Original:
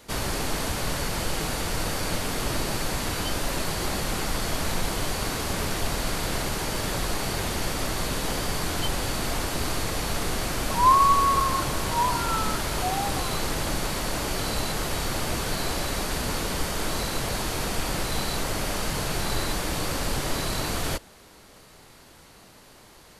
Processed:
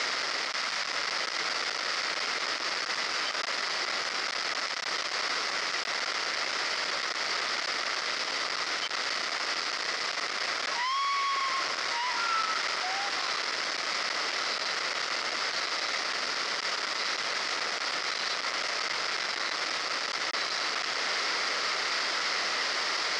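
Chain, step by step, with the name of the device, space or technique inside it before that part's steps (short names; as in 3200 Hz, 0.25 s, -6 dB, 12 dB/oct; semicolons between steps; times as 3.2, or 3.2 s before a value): home computer beeper (infinite clipping; speaker cabinet 560–5600 Hz, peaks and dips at 860 Hz -4 dB, 1300 Hz +6 dB, 2000 Hz +8 dB, 5100 Hz +9 dB); 0.49–0.89 bell 390 Hz -8 dB 0.83 oct; gain -3.5 dB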